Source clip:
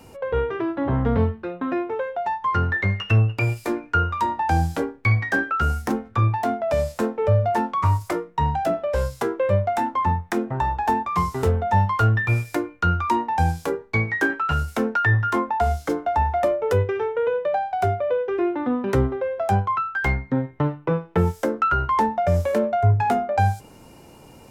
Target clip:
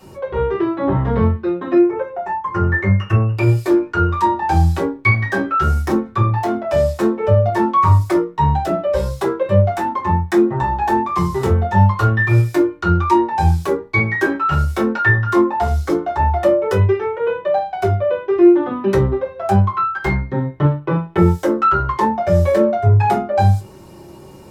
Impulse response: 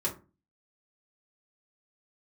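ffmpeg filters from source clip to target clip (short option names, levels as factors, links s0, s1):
-filter_complex "[0:a]asetnsamples=n=441:p=0,asendcmd='1.78 equalizer g -10.5;3.37 equalizer g 4',equalizer=f=3900:w=1.8:g=4[s0];[1:a]atrim=start_sample=2205,atrim=end_sample=3528[s1];[s0][s1]afir=irnorm=-1:irlink=0,volume=0.891"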